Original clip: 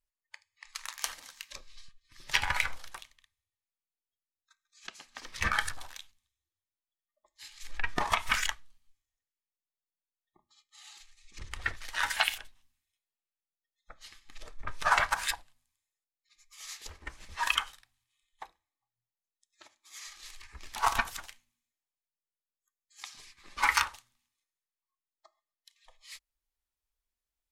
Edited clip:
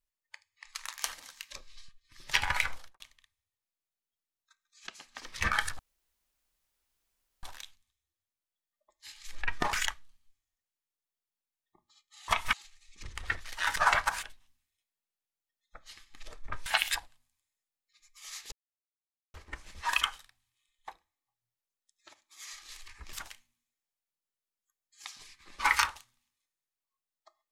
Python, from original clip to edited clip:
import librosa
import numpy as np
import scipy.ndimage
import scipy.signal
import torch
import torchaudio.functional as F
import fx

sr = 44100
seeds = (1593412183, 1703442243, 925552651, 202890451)

y = fx.studio_fade_out(x, sr, start_s=2.75, length_s=0.25)
y = fx.edit(y, sr, fx.insert_room_tone(at_s=5.79, length_s=1.64),
    fx.move(start_s=8.09, length_s=0.25, to_s=10.89),
    fx.swap(start_s=12.12, length_s=0.25, other_s=14.81, other_length_s=0.46),
    fx.insert_silence(at_s=16.88, length_s=0.82),
    fx.cut(start_s=20.67, length_s=0.44), tone=tone)